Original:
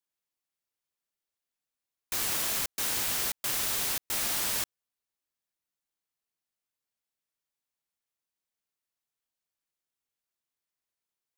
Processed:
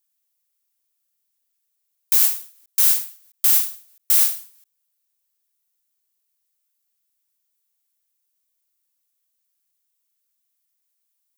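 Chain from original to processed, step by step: RIAA curve recording; endings held to a fixed fall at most 140 dB/s

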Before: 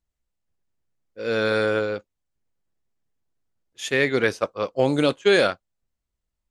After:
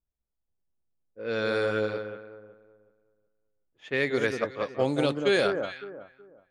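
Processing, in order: echo whose repeats swap between lows and highs 186 ms, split 1.4 kHz, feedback 50%, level -5.5 dB; level-controlled noise filter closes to 1 kHz, open at -16 dBFS; trim -6 dB

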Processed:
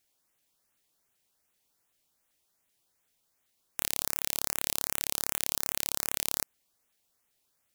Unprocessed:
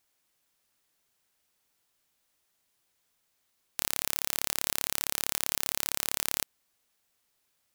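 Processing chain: LFO notch saw up 2.6 Hz 900–5600 Hz

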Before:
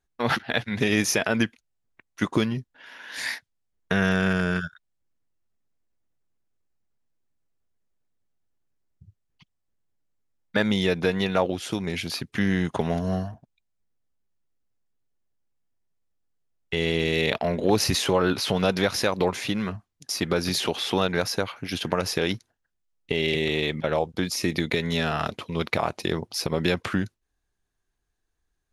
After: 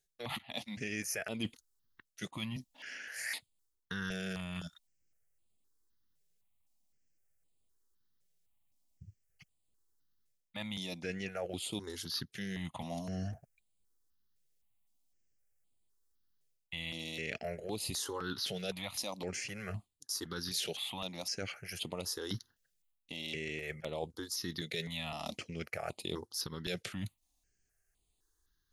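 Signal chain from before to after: treble shelf 2.9 kHz +11.5 dB; reverse; compression 5:1, threshold -33 dBFS, peak gain reduction 18.5 dB; reverse; stepped phaser 3.9 Hz 270–5700 Hz; trim -1.5 dB

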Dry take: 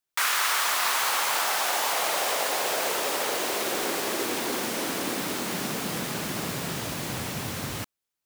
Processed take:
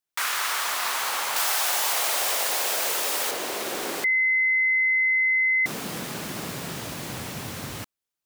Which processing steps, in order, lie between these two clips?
1.36–3.31 s: tilt EQ +2 dB/octave; 4.04–5.66 s: bleep 2.05 kHz -16.5 dBFS; trim -2 dB

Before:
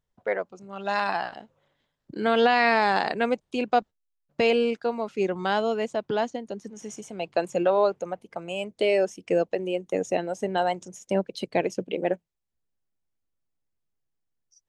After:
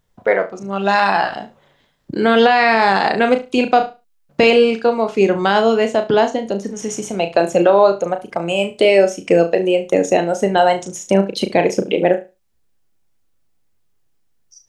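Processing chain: in parallel at -2.5 dB: compression, threshold -34 dBFS, peak gain reduction 17 dB; on the sum: flutter echo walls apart 6.1 m, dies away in 0.26 s; loudness maximiser +10.5 dB; trim -1 dB

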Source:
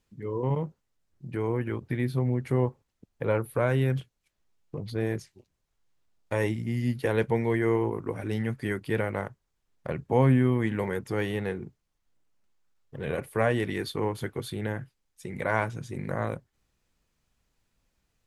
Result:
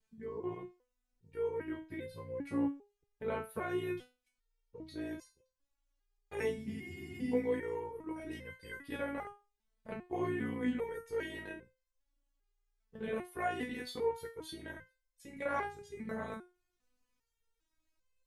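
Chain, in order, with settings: ring modulator 29 Hz; spectral freeze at 6.74 s, 0.58 s; resonator arpeggio 2.5 Hz 220–520 Hz; trim +9 dB

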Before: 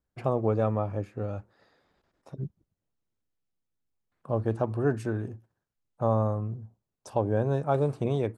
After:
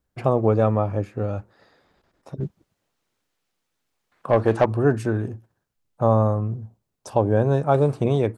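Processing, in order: 2.40–4.66 s: overdrive pedal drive 16 dB, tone 5.2 kHz, clips at -12.5 dBFS; trim +7 dB

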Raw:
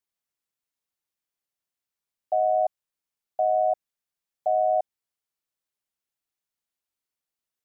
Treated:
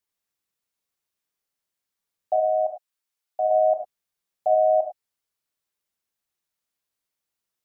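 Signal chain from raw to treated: 2.36–3.51 s: bass shelf 470 Hz -10 dB; gated-style reverb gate 120 ms flat, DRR 3 dB; trim +2 dB

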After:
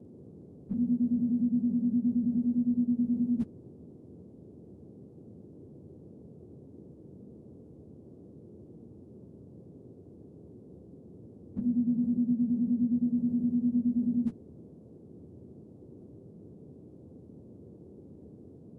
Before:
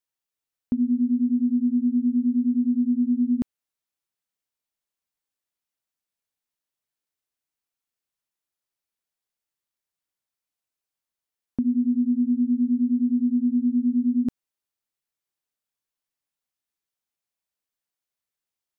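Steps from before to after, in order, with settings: frequency axis rescaled in octaves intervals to 89%; band noise 76–480 Hz -50 dBFS; formant shift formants -3 st

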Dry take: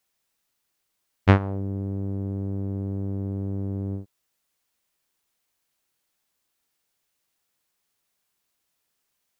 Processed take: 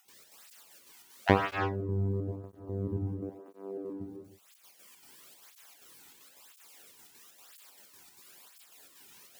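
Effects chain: random holes in the spectrogram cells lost 20%; 3.07–4.00 s: high-pass 270 Hz 24 dB/octave; upward compressor, threshold -34 dBFS; trance gate ".xx.xxxx.x" 191 bpm -12 dB; gated-style reverb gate 360 ms flat, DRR 1 dB; cancelling through-zero flanger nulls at 0.99 Hz, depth 1.9 ms

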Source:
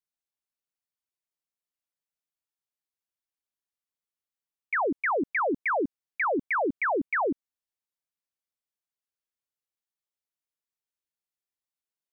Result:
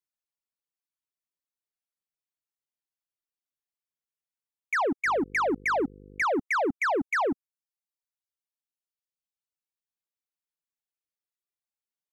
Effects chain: reverb removal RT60 1.8 s; waveshaping leveller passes 1; 5.05–6.22 s: mains buzz 50 Hz, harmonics 10, -50 dBFS -2 dB/octave

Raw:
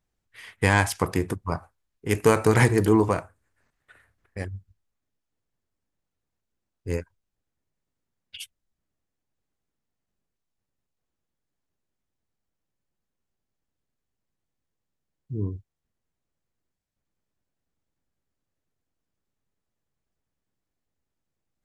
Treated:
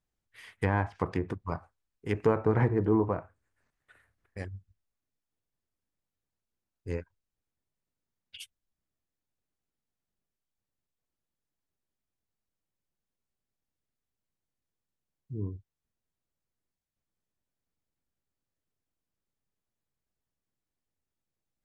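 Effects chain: low-pass that closes with the level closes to 1.2 kHz, closed at -18.5 dBFS; trim -6 dB

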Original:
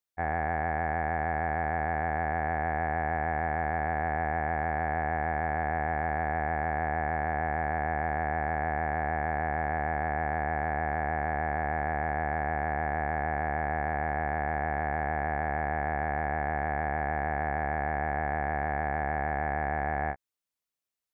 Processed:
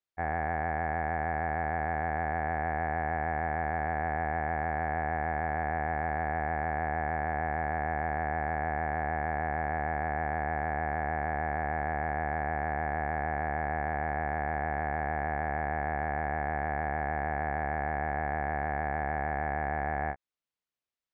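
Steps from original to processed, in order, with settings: low-pass 4.5 kHz; trim -1.5 dB

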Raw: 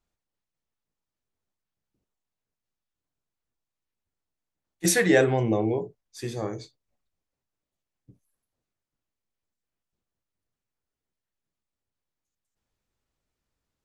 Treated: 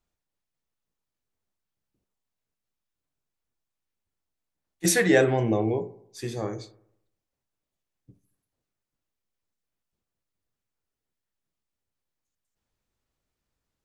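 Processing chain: bucket-brigade echo 74 ms, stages 1024, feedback 50%, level -17 dB

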